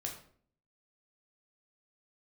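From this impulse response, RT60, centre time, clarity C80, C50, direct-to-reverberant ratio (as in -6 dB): 0.55 s, 23 ms, 11.0 dB, 7.5 dB, 0.5 dB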